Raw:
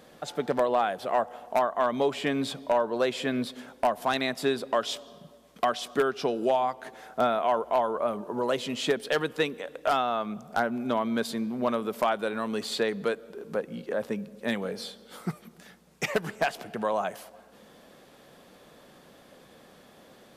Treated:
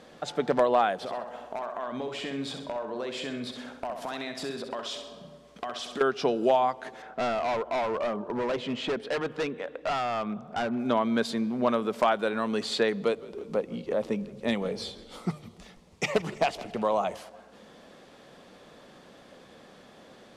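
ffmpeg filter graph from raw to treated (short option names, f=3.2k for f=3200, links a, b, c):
-filter_complex "[0:a]asettb=1/sr,asplit=3[a][b][c];[a]atrim=end=0.954[d];[b]atrim=start=0.95:end=6.01,asetpts=PTS-STARTPTS,afade=t=in:d=0.004:c=qsin,afade=t=out:st=5.056:d=0.004:c=qsin,acompressor=threshold=-34dB:ratio=5:attack=3.2:release=140:knee=1:detection=peak,aecho=1:1:65|130|195|260|325:0.447|0.192|0.0826|0.0355|0.0153,atrim=end_sample=223146[e];[c]atrim=start=6.006[f];[d][e]acrossfade=d=0.004:c1=hsin:c2=qsin[g];[g][f]acrossfade=d=0.004:c1=qsin:c2=hsin,asettb=1/sr,asplit=3[h][i][j];[h]atrim=end=7.024[k];[i]atrim=start=7.02:end=10.79,asetpts=PTS-STARTPTS,afade=t=in:d=0.004:c=qsin,afade=t=out:st=3.766:d=0.004:c=qsin,bass=f=250:g=0,treble=f=4k:g=-14,volume=27.5dB,asoftclip=hard,volume=-27.5dB[l];[j]atrim=start=10.786[m];[k][l]acrossfade=d=0.004:c1=hsin:c2=qsin[n];[n][m]acrossfade=d=0.004:c1=qsin:c2=hsin,asettb=1/sr,asplit=3[o][p][q];[o]atrim=end=13.004[r];[p]atrim=start=13:end=17.17,asetpts=PTS-STARTPTS,afade=t=in:d=0.004:c=qsin,afade=t=out:st=4.166:d=0.004:c=qsin,equalizer=f=1.6k:w=5:g=-12,asplit=6[s][t][u][v][w][x];[t]adelay=163,afreqshift=-66,volume=-20.5dB[y];[u]adelay=326,afreqshift=-132,volume=-24.5dB[z];[v]adelay=489,afreqshift=-198,volume=-28.5dB[aa];[w]adelay=652,afreqshift=-264,volume=-32.5dB[ab];[x]adelay=815,afreqshift=-330,volume=-36.6dB[ac];[s][y][z][aa][ab][ac]amix=inputs=6:normalize=0,atrim=end_sample=183897[ad];[q]atrim=start=17.166[ae];[r][ad]acrossfade=d=0.004:c1=hsin:c2=qsin[af];[af][ae]acrossfade=d=0.004:c1=qsin:c2=hsin,lowpass=7.4k,bandreject=f=50:t=h:w=6,bandreject=f=100:t=h:w=6,bandreject=f=150:t=h:w=6,volume=2dB"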